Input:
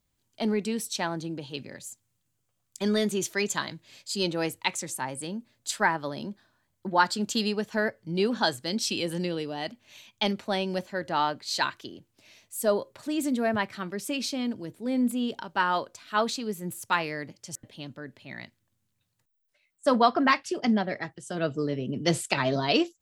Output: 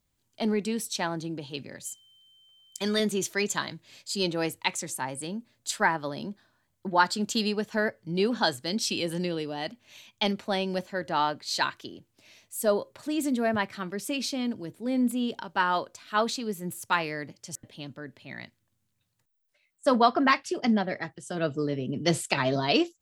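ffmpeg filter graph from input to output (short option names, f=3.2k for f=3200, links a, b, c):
-filter_complex "[0:a]asettb=1/sr,asplit=3[a][b][c];[a]atrim=end=1.854[d];[b]atrim=start=1.85:end=3,asetpts=PTS-STARTPTS,afade=t=in:d=0.004:c=qsin,afade=t=out:st=1.146:d=0.004:c=qsin,tiltshelf=f=750:g=-4,aeval=exprs='val(0)+0.00141*sin(2*PI*3100*n/s)':c=same[e];[c]atrim=start=2.996[f];[d][e]acrossfade=d=0.004:c1=hsin:c2=qsin[g];[g][f]acrossfade=d=0.004:c1=qsin:c2=hsin"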